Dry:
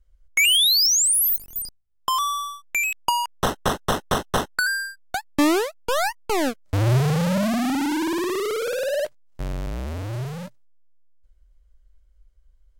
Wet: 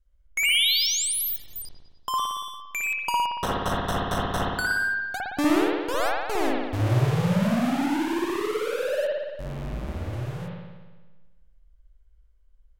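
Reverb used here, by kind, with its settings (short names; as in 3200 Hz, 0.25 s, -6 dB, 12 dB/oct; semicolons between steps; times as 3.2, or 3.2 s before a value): spring tank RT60 1.3 s, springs 57 ms, chirp 50 ms, DRR -4 dB; gain -7.5 dB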